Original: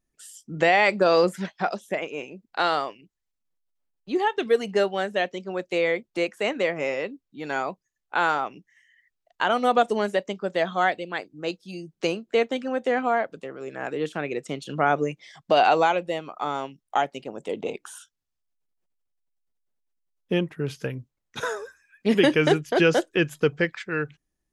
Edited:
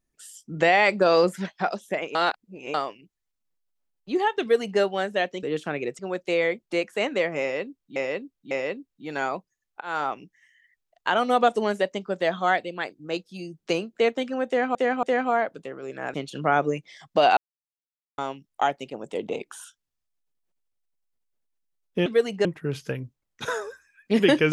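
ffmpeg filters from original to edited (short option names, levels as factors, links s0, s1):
-filter_complex "[0:a]asplit=15[s0][s1][s2][s3][s4][s5][s6][s7][s8][s9][s10][s11][s12][s13][s14];[s0]atrim=end=2.152[s15];[s1]atrim=start=2.148:end=2.742,asetpts=PTS-STARTPTS,areverse[s16];[s2]atrim=start=2.738:end=5.432[s17];[s3]atrim=start=13.918:end=14.482[s18];[s4]atrim=start=5.428:end=7.402[s19];[s5]atrim=start=6.848:end=7.402[s20];[s6]atrim=start=6.848:end=8.15,asetpts=PTS-STARTPTS,afade=t=out:st=1.298:d=0.004:c=hsin[s21];[s7]atrim=start=8.15:end=13.092,asetpts=PTS-STARTPTS,afade=t=in:d=0.26[s22];[s8]atrim=start=12.808:end=13.092[s23];[s9]atrim=start=12.808:end=13.922[s24];[s10]atrim=start=14.478:end=15.71,asetpts=PTS-STARTPTS,afade=t=out:st=1.228:d=0.004:c=hsin[s25];[s11]atrim=start=15.71:end=16.52,asetpts=PTS-STARTPTS,volume=0[s26];[s12]atrim=start=16.52:end=20.402,asetpts=PTS-STARTPTS,afade=t=in:d=0.004:c=hsin[s27];[s13]atrim=start=4.408:end=4.802[s28];[s14]atrim=start=20.398[s29];[s15][s16]acrossfade=d=0.004:c1=hsin:c2=hsin[s30];[s30][s17]acrossfade=d=0.004:c1=hsin:c2=hsin[s31];[s31][s18]acrossfade=d=0.004:c1=hsin:c2=hsin[s32];[s32][s19]acrossfade=d=0.004:c1=hsin:c2=hsin[s33];[s33][s20]acrossfade=d=0.004:c1=hsin:c2=hsin[s34];[s21][s22]concat=n=2:v=0:a=1[s35];[s34][s35]acrossfade=d=0.004:c1=hsin:c2=hsin[s36];[s36][s23]acrossfade=d=0.004:c1=hsin:c2=hsin[s37];[s37][s24]acrossfade=d=0.004:c1=hsin:c2=hsin[s38];[s25][s26][s27]concat=n=3:v=0:a=1[s39];[s38][s39]acrossfade=d=0.004:c1=hsin:c2=hsin[s40];[s40][s28]acrossfade=d=0.004:c1=hsin:c2=hsin[s41];[s41][s29]acrossfade=d=0.004:c1=hsin:c2=hsin"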